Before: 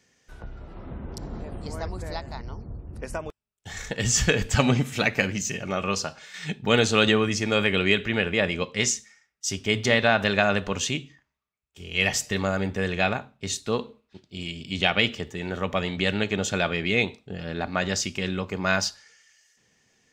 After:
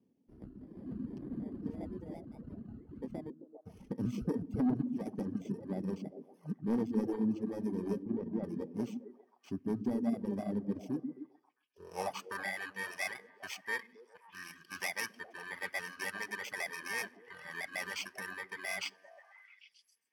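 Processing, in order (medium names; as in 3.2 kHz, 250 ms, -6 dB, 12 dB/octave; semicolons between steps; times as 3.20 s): bit-reversed sample order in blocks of 32 samples; band-pass sweep 260 Hz -> 1.8 kHz, 11.45–12.51 s; in parallel at +1 dB: gain riding within 4 dB 0.5 s; on the sum: saturation -19 dBFS, distortion -16 dB; on a send: repeats whose band climbs or falls 133 ms, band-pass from 220 Hz, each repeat 0.7 oct, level -2 dB; on the sum: reverb removal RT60 1.9 s; 8.03–8.44 s: tape spacing loss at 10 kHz 31 dB; trim -5 dB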